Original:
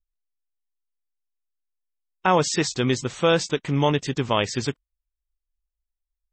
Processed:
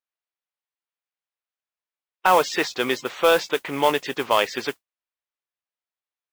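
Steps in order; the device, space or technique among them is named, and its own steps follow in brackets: carbon microphone (BPF 500–3200 Hz; soft clip -12 dBFS, distortion -17 dB; modulation noise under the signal 19 dB); gain +6 dB

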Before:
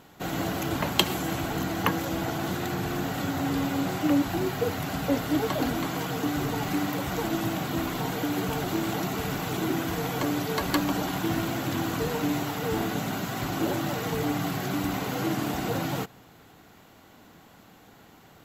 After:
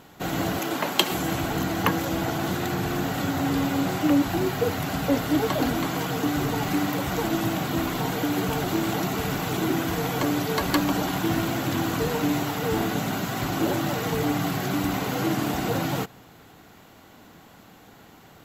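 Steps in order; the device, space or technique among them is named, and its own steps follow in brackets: 0.59–1.12 HPF 260 Hz 12 dB/oct; parallel distortion (in parallel at -7.5 dB: hard clip -19 dBFS, distortion -19 dB)

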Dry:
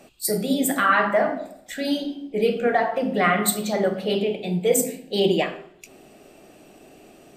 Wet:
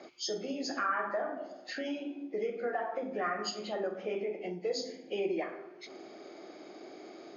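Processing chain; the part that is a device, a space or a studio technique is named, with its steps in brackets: hearing aid with frequency lowering (nonlinear frequency compression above 1600 Hz 1.5:1; compressor 2.5:1, threshold -38 dBFS, peak gain reduction 16 dB; speaker cabinet 320–6500 Hz, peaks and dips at 340 Hz +7 dB, 1300 Hz +3 dB, 2700 Hz -5 dB)

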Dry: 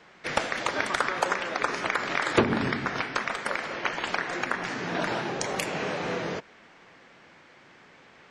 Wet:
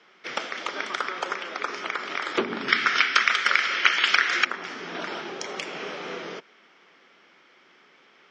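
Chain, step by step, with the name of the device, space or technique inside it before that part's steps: 2.68–4.45 band shelf 3200 Hz +13.5 dB 2.9 oct; television speaker (speaker cabinet 180–7000 Hz, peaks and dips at 390 Hz +6 dB, 1300 Hz +7 dB, 2200 Hz +5 dB, 3200 Hz +9 dB, 5400 Hz +8 dB); gain -7 dB

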